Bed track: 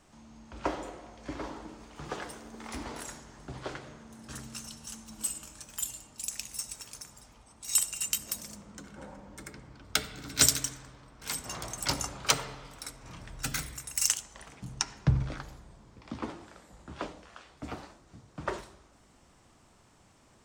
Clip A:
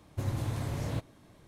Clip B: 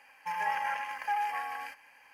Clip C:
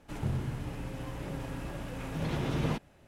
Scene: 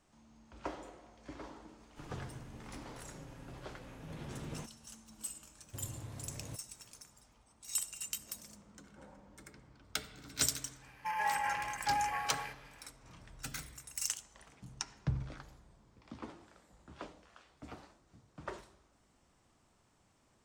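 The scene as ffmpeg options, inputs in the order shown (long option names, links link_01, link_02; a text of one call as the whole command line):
ffmpeg -i bed.wav -i cue0.wav -i cue1.wav -i cue2.wav -filter_complex "[0:a]volume=-9.5dB[link_01];[3:a]atrim=end=3.07,asetpts=PTS-STARTPTS,volume=-13.5dB,afade=type=in:duration=0.004:curve=hsin,afade=type=out:start_time=3.066:duration=0.004:curve=hsin,adelay=1880[link_02];[1:a]atrim=end=1.47,asetpts=PTS-STARTPTS,volume=-13dB,afade=type=in:duration=0.004:curve=hsin,afade=type=out:start_time=1.466:duration=0.004:curve=hsin,adelay=5560[link_03];[2:a]atrim=end=2.13,asetpts=PTS-STARTPTS,volume=-2dB,afade=type=in:duration=0.05,afade=type=out:start_time=2.08:duration=0.05,adelay=10790[link_04];[link_01][link_02][link_03][link_04]amix=inputs=4:normalize=0" out.wav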